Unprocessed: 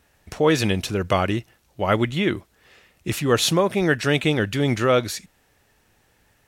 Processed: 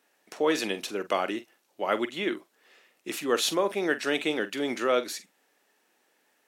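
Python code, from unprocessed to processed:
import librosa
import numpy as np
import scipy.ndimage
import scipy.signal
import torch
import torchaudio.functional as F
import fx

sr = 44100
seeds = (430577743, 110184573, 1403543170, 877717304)

y = scipy.signal.sosfilt(scipy.signal.butter(4, 260.0, 'highpass', fs=sr, output='sos'), x)
y = fx.doubler(y, sr, ms=45.0, db=-13.5)
y = y * librosa.db_to_amplitude(-6.0)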